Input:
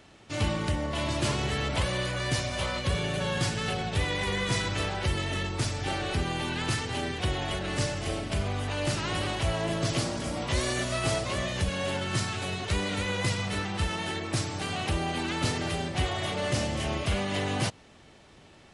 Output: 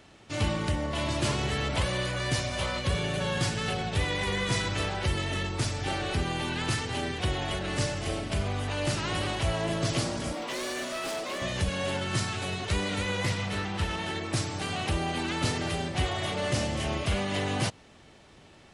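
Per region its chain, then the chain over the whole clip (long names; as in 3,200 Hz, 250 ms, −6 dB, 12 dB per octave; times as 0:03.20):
0:10.33–0:11.42: high-pass filter 230 Hz 24 dB per octave + high-shelf EQ 8,200 Hz −6 dB + hard clipping −30.5 dBFS
0:13.24–0:14.16: high-shelf EQ 5,600 Hz −4 dB + mains-hum notches 60/120/180/240/300/360/420/480 Hz + highs frequency-modulated by the lows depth 0.15 ms
whole clip: no processing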